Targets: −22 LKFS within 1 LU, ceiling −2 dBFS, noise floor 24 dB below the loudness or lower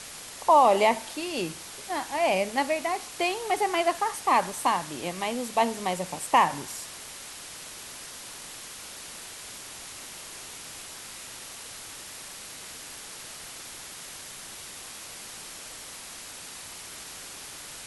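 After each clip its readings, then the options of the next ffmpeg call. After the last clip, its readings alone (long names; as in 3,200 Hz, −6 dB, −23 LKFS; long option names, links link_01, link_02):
background noise floor −43 dBFS; target noise floor −54 dBFS; integrated loudness −30.0 LKFS; sample peak −9.0 dBFS; target loudness −22.0 LKFS
→ -af "afftdn=noise_reduction=11:noise_floor=-43"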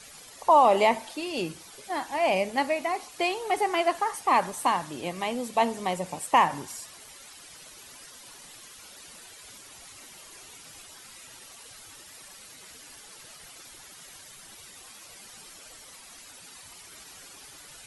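background noise floor −49 dBFS; target noise floor −50 dBFS
→ -af "afftdn=noise_reduction=6:noise_floor=-49"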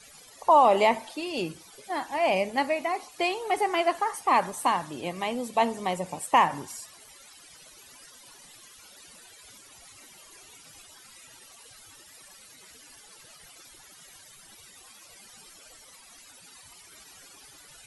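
background noise floor −52 dBFS; integrated loudness −26.0 LKFS; sample peak −9.0 dBFS; target loudness −22.0 LKFS
→ -af "volume=4dB"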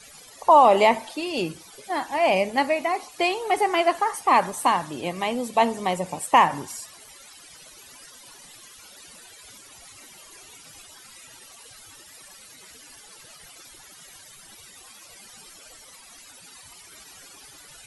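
integrated loudness −22.0 LKFS; sample peak −5.0 dBFS; background noise floor −48 dBFS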